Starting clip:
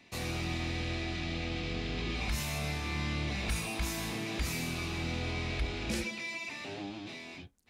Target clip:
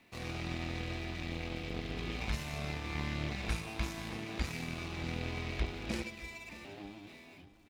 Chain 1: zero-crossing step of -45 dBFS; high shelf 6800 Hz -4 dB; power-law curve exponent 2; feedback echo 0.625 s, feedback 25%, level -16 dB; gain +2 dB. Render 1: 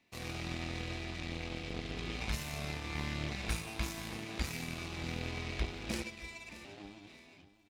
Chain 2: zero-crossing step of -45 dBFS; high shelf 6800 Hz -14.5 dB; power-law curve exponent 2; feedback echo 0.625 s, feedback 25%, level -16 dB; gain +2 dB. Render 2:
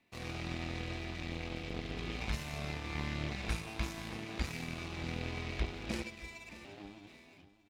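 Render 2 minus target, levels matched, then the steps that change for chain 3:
zero-crossing step: distortion -5 dB
change: zero-crossing step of -38.5 dBFS

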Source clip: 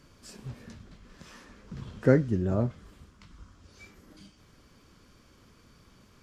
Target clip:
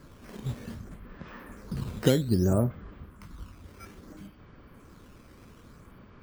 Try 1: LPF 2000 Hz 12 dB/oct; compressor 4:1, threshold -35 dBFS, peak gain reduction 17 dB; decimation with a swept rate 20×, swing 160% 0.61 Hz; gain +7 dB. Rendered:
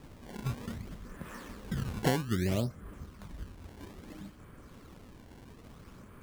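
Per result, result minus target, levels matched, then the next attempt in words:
compressor: peak gain reduction +6.5 dB; decimation with a swept rate: distortion +9 dB
LPF 2000 Hz 12 dB/oct; compressor 4:1, threshold -26.5 dBFS, peak gain reduction 11 dB; decimation with a swept rate 20×, swing 160% 0.61 Hz; gain +7 dB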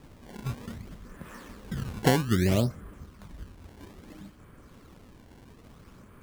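decimation with a swept rate: distortion +9 dB
LPF 2000 Hz 12 dB/oct; compressor 4:1, threshold -26.5 dBFS, peak gain reduction 11 dB; decimation with a swept rate 7×, swing 160% 0.61 Hz; gain +7 dB

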